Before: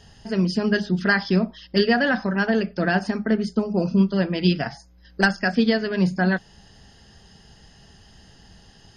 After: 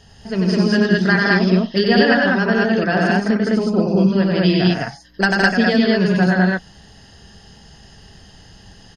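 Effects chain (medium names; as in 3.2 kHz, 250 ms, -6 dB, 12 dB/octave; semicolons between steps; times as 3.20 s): loudspeakers at several distances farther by 32 m -3 dB, 56 m -4 dB, 71 m 0 dB; trim +1.5 dB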